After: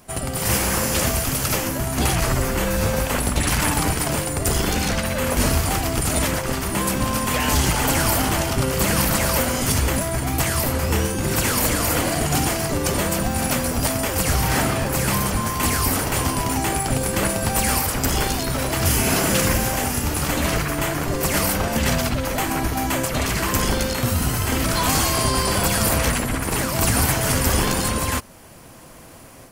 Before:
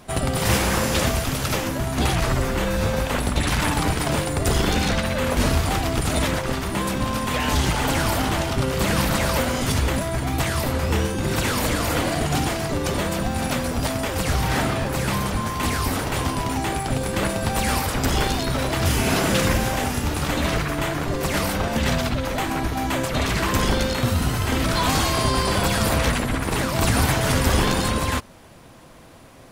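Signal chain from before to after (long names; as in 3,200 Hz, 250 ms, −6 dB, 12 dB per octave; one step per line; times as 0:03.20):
high-shelf EQ 7,000 Hz +11 dB
automatic gain control gain up to 7 dB
parametric band 3,700 Hz −6 dB 0.25 octaves
level −4.5 dB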